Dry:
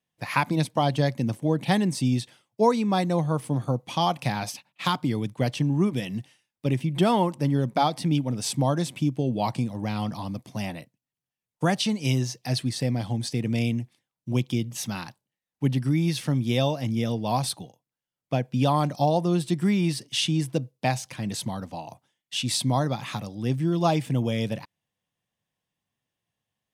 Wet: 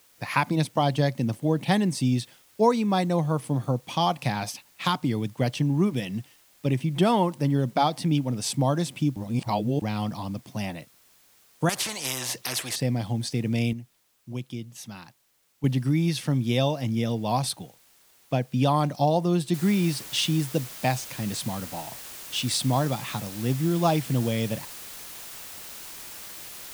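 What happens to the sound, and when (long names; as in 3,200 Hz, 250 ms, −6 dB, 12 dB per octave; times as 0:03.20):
0:09.16–0:09.82: reverse
0:11.69–0:12.76: every bin compressed towards the loudest bin 4 to 1
0:13.73–0:15.64: clip gain −9 dB
0:19.54: noise floor change −59 dB −41 dB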